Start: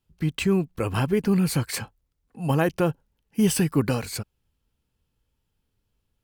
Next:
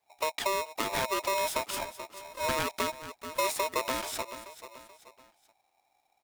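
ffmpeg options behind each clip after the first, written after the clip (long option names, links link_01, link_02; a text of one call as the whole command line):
ffmpeg -i in.wav -filter_complex "[0:a]aecho=1:1:432|864|1296:0.106|0.0445|0.0187,acrossover=split=150|1700[link_01][link_02][link_03];[link_01]acompressor=threshold=-39dB:ratio=4[link_04];[link_02]acompressor=threshold=-31dB:ratio=4[link_05];[link_03]acompressor=threshold=-36dB:ratio=4[link_06];[link_04][link_05][link_06]amix=inputs=3:normalize=0,aeval=exprs='val(0)*sgn(sin(2*PI*780*n/s))':channel_layout=same" out.wav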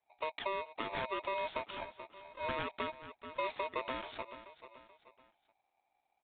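ffmpeg -i in.wav -af "aresample=8000,aresample=44100,volume=-7dB" out.wav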